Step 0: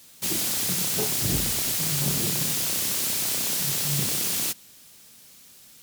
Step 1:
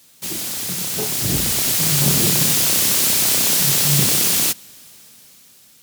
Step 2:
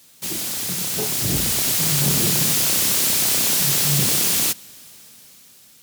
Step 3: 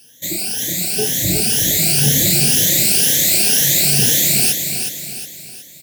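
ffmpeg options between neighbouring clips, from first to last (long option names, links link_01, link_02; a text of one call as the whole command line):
ffmpeg -i in.wav -af "highpass=58,dynaudnorm=framelen=320:gausssize=9:maxgain=11dB" out.wav
ffmpeg -i in.wav -af "asoftclip=type=tanh:threshold=-12.5dB" out.wav
ffmpeg -i in.wav -filter_complex "[0:a]afftfilt=real='re*pow(10,18/40*sin(2*PI*(1.1*log(max(b,1)*sr/1024/100)/log(2)-(2)*(pts-256)/sr)))':imag='im*pow(10,18/40*sin(2*PI*(1.1*log(max(b,1)*sr/1024/100)/log(2)-(2)*(pts-256)/sr)))':win_size=1024:overlap=0.75,asuperstop=centerf=1100:order=8:qfactor=1.5,asplit=2[link_01][link_02];[link_02]aecho=0:1:365|730|1095|1460|1825:0.473|0.208|0.0916|0.0403|0.0177[link_03];[link_01][link_03]amix=inputs=2:normalize=0" out.wav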